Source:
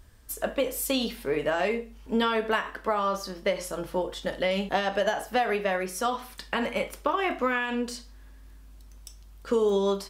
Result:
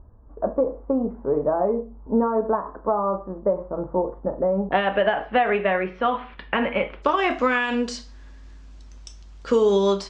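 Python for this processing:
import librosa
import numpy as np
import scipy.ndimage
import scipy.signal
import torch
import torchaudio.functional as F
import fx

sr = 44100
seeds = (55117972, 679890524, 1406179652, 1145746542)

y = fx.steep_lowpass(x, sr, hz=fx.steps((0.0, 1100.0), (4.71, 3000.0), (7.02, 7200.0)), slope=36)
y = y * 10.0 ** (5.5 / 20.0)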